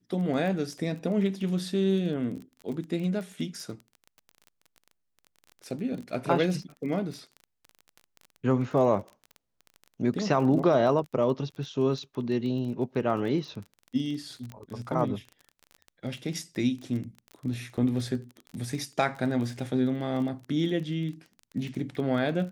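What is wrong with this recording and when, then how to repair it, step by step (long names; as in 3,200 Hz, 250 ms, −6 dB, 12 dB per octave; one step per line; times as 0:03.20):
surface crackle 23 per second −35 dBFS
0:14.52: click −27 dBFS
0:17.77–0:17.78: drop-out 7 ms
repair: click removal
repair the gap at 0:17.77, 7 ms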